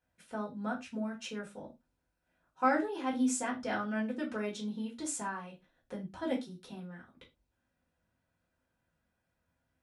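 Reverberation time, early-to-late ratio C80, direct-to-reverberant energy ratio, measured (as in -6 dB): not exponential, 20.5 dB, -4.5 dB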